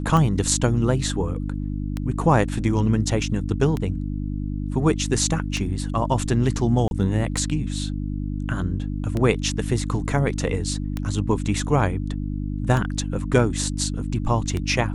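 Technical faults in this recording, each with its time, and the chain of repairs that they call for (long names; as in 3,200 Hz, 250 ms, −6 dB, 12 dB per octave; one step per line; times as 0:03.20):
mains hum 50 Hz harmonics 6 −27 dBFS
scratch tick 33 1/3 rpm −13 dBFS
0:06.88–0:06.91: drop-out 31 ms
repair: click removal
hum removal 50 Hz, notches 6
repair the gap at 0:06.88, 31 ms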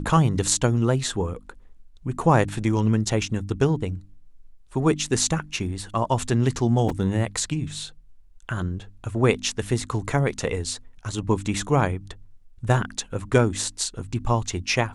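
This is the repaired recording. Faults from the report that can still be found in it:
none of them is left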